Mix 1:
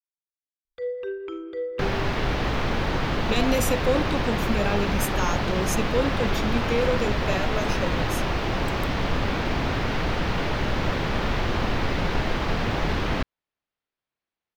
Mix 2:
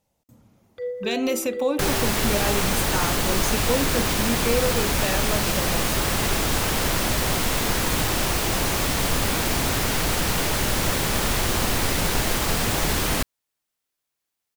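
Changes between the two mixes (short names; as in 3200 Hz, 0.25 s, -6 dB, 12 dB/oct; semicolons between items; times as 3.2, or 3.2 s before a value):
speech: entry -2.25 s; second sound: remove air absorption 260 m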